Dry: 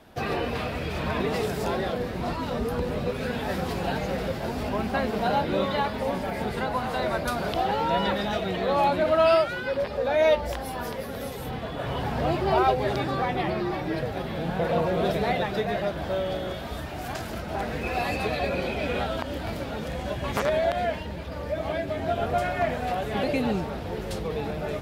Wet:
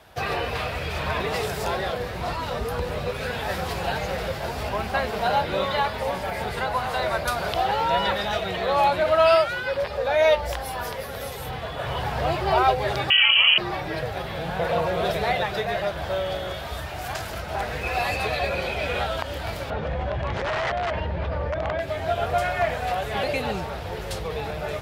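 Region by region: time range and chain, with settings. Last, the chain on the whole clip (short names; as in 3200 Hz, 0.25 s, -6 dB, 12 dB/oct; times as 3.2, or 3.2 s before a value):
13.1–13.58 low shelf 340 Hz +11 dB + inverted band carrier 3100 Hz
19.7–21.8 wrapped overs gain 20 dB + tape spacing loss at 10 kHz 36 dB + fast leveller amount 100%
whole clip: HPF 44 Hz; bell 250 Hz -13.5 dB 1.3 oct; gain +4.5 dB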